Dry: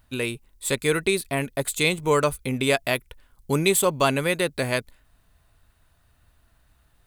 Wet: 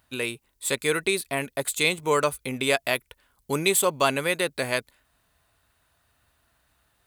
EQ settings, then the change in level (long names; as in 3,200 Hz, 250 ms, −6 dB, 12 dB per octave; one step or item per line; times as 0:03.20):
high-pass filter 47 Hz
low-shelf EQ 260 Hz −9.5 dB
0.0 dB